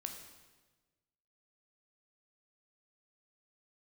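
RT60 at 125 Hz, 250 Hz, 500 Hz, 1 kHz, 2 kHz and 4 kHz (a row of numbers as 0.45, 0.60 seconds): 1.6, 1.4, 1.4, 1.2, 1.1, 1.1 seconds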